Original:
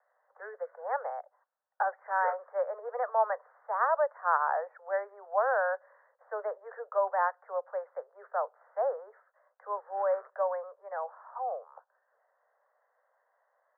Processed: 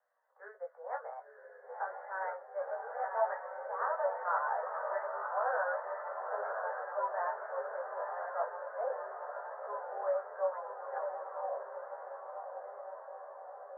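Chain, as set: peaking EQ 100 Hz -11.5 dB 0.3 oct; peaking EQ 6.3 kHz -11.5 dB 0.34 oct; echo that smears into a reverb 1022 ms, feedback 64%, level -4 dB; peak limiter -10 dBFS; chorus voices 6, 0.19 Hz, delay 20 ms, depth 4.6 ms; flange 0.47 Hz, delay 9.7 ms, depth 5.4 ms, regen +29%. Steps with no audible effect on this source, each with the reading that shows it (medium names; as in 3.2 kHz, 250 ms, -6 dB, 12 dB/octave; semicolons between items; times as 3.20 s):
peaking EQ 100 Hz: input has nothing below 380 Hz; peaking EQ 6.3 kHz: input has nothing above 1.9 kHz; peak limiter -10 dBFS: peak at its input -13.0 dBFS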